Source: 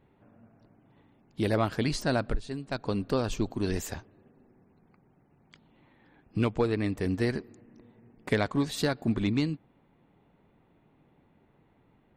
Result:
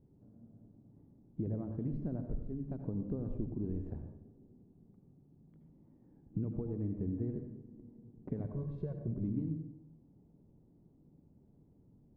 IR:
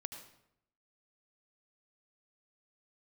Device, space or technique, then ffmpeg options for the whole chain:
television next door: -filter_complex "[0:a]asettb=1/sr,asplit=3[s0][s1][s2];[s0]atrim=end=8.444[s3];[s1]atrim=start=8.44:end=9.12,asetpts=PTS-STARTPTS,afade=t=in:d=0.004:c=qsin,afade=t=out:st=0.676:d=0.004:c=qsin,aecho=1:1:1.9:0.99,atrim=end_sample=29988[s4];[s2]atrim=start=9.116[s5];[s3][s4]acrossfade=d=0.004:c1=hsin:c2=qsin[s6];[s6][s5]acrossfade=d=0.004:c1=qsin:c2=hsin,acompressor=threshold=0.02:ratio=5,lowpass=310[s7];[1:a]atrim=start_sample=2205[s8];[s7][s8]afir=irnorm=-1:irlink=0,volume=1.68"

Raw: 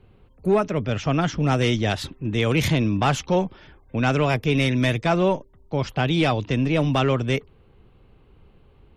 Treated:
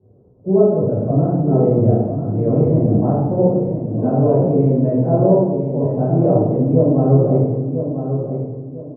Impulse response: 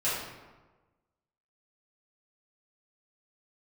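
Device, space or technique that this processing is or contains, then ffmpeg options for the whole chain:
next room: -filter_complex "[0:a]highpass=120,lowpass=f=610:w=0.5412,lowpass=f=610:w=1.3066[s0];[1:a]atrim=start_sample=2205[s1];[s0][s1]afir=irnorm=-1:irlink=0,highshelf=f=5000:g=11,asplit=2[s2][s3];[s3]adelay=996,lowpass=f=4200:p=1,volume=0.398,asplit=2[s4][s5];[s5]adelay=996,lowpass=f=4200:p=1,volume=0.3,asplit=2[s6][s7];[s7]adelay=996,lowpass=f=4200:p=1,volume=0.3,asplit=2[s8][s9];[s9]adelay=996,lowpass=f=4200:p=1,volume=0.3[s10];[s2][s4][s6][s8][s10]amix=inputs=5:normalize=0,volume=0.891"

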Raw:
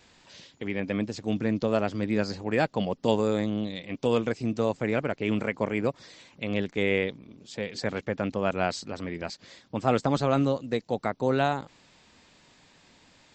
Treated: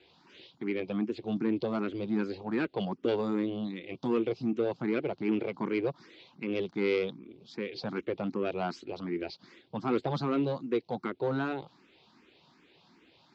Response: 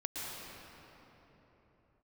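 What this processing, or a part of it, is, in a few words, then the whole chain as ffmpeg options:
barber-pole phaser into a guitar amplifier: -filter_complex "[0:a]asplit=2[s0][s1];[s1]afreqshift=2.6[s2];[s0][s2]amix=inputs=2:normalize=1,asoftclip=type=tanh:threshold=0.0794,highpass=96,equalizer=f=100:t=q:w=4:g=-7,equalizer=f=360:t=q:w=4:g=9,equalizer=f=590:t=q:w=4:g=-5,equalizer=f=1800:t=q:w=4:g=-6,lowpass=f=4500:w=0.5412,lowpass=f=4500:w=1.3066"

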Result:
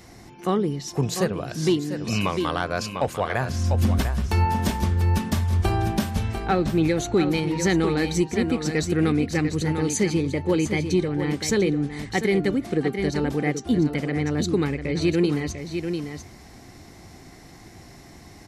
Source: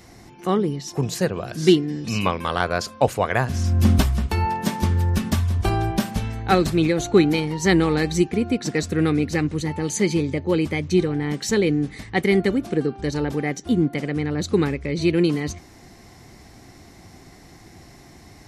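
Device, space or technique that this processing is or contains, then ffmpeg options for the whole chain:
soft clipper into limiter: -filter_complex "[0:a]asettb=1/sr,asplit=3[s0][s1][s2];[s0]atrim=end=6.444[s3];[s1]atrim=start=6.44:end=6.88,asetpts=PTS-STARTPTS,afade=t=in:d=0.004:c=qsin,afade=t=out:st=0.436:d=0.004:c=qsin,aemphasis=mode=reproduction:type=75fm[s4];[s2]atrim=start=6.876[s5];[s3][s4]acrossfade=d=0.004:c1=hsin:c2=qsin[s6];[s6][s5]acrossfade=d=0.004:c1=qsin:c2=hsin,aecho=1:1:696:0.355,asoftclip=type=tanh:threshold=0.562,alimiter=limit=0.251:level=0:latency=1:release=427"

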